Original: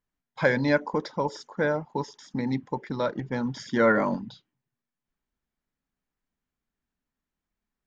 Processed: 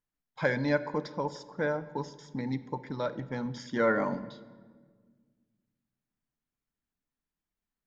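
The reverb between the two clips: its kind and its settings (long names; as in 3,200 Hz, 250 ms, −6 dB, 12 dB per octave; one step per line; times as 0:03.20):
rectangular room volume 1,800 cubic metres, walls mixed, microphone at 0.42 metres
level −5.5 dB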